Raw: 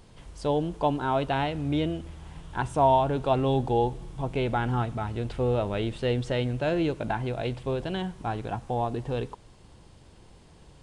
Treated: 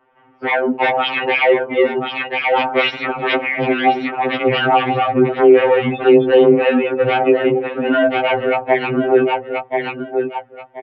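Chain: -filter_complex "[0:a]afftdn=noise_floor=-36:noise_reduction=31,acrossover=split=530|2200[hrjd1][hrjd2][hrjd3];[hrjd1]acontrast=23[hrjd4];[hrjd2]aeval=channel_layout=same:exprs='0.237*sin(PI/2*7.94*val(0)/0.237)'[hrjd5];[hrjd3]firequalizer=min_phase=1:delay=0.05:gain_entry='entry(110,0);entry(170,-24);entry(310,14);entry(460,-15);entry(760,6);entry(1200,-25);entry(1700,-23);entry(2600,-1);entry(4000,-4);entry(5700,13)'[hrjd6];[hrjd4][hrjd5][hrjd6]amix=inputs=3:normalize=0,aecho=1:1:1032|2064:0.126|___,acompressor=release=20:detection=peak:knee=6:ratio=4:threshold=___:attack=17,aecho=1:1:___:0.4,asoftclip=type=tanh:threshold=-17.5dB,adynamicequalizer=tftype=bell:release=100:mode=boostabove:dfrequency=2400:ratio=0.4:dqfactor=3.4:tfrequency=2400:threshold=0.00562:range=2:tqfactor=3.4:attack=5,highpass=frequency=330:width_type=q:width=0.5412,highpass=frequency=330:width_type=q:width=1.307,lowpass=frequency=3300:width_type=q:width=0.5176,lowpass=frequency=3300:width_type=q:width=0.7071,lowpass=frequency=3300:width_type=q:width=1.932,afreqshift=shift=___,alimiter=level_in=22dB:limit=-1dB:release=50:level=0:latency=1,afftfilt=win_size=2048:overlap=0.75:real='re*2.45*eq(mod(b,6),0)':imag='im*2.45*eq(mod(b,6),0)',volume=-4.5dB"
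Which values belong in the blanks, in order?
0.0302, -28dB, 4.8, -100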